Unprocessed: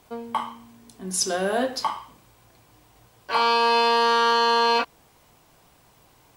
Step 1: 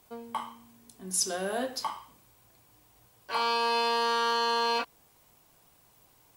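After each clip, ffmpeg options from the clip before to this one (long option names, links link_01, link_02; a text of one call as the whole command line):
ffmpeg -i in.wav -af "highshelf=frequency=7600:gain=10,volume=-8dB" out.wav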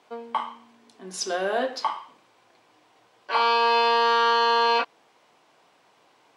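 ffmpeg -i in.wav -af "highpass=330,lowpass=3700,volume=7.5dB" out.wav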